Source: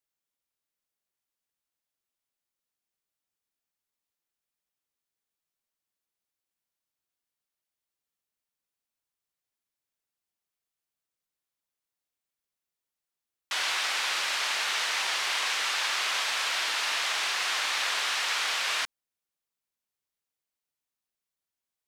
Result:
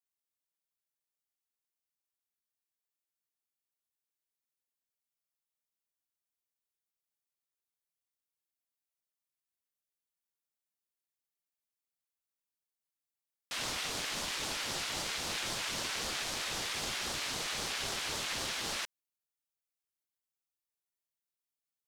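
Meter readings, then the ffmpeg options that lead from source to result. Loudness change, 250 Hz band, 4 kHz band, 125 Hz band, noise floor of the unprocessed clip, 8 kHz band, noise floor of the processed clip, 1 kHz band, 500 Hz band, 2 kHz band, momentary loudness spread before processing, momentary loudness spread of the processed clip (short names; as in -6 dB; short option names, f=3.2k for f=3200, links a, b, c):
-8.0 dB, +10.0 dB, -8.0 dB, n/a, under -85 dBFS, -4.5 dB, under -85 dBFS, -9.0 dB, -1.0 dB, -10.5 dB, 1 LU, 1 LU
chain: -af "highshelf=f=5.9k:g=7,aeval=exprs='val(0)*sin(2*PI*1200*n/s+1200*0.75/3.8*sin(2*PI*3.8*n/s))':c=same,volume=-6.5dB"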